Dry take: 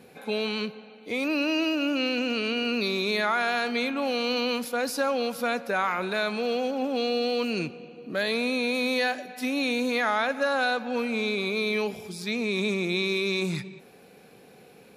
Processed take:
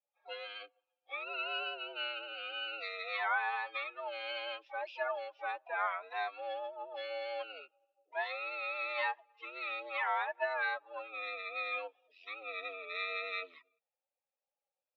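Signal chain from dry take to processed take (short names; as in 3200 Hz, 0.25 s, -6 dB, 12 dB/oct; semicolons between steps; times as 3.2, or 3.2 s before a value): per-bin expansion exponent 2; harmoniser -12 st -5 dB, +7 st -12 dB; mistuned SSB +83 Hz 560–3400 Hz; gain -4.5 dB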